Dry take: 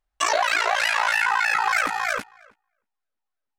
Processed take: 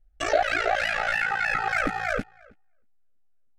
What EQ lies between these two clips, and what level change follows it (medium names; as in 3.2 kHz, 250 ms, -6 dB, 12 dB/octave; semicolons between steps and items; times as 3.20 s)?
Butterworth band-stop 1 kHz, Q 2.2; tilt EQ -4 dB/octave; 0.0 dB